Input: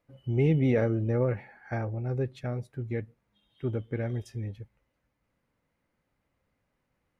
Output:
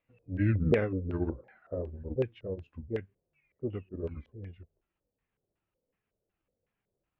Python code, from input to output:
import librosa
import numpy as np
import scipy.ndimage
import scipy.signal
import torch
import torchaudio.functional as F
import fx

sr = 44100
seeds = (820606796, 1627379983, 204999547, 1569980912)

y = fx.pitch_ramps(x, sr, semitones=-9.0, every_ms=720)
y = fx.filter_lfo_lowpass(y, sr, shape='square', hz=2.7, low_hz=520.0, high_hz=2700.0, q=3.7)
y = fx.upward_expand(y, sr, threshold_db=-34.0, expansion=1.5)
y = F.gain(torch.from_numpy(y), -1.0).numpy()